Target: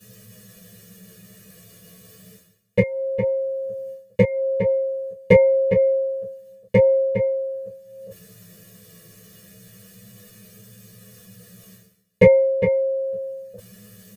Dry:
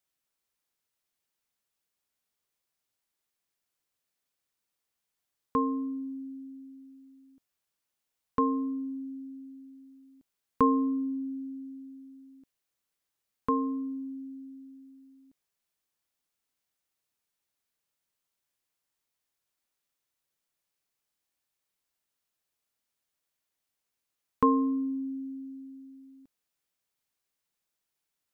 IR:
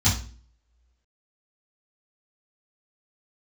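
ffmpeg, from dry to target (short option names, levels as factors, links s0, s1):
-filter_complex "[0:a]lowshelf=f=260:g=5,aecho=1:1:3.4:0.92,asplit=2[s0][s1];[s1]adelay=816.3,volume=0.398,highshelf=f=4000:g=-18.4[s2];[s0][s2]amix=inputs=2:normalize=0[s3];[1:a]atrim=start_sample=2205,atrim=end_sample=4410[s4];[s3][s4]afir=irnorm=-1:irlink=0,areverse,acompressor=mode=upward:threshold=0.112:ratio=2.5,areverse,flanger=delay=19:depth=4.6:speed=0.14,asetrate=88200,aresample=44100,volume=0.668"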